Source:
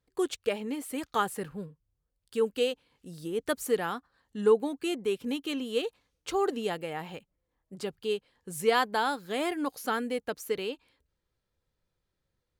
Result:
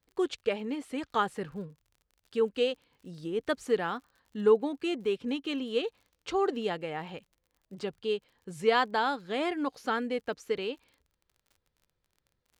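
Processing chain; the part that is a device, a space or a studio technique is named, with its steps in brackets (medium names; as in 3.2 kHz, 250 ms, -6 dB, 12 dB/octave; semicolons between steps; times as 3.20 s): lo-fi chain (low-pass 5 kHz 12 dB/octave; wow and flutter 15 cents; crackle 45 per s -49 dBFS)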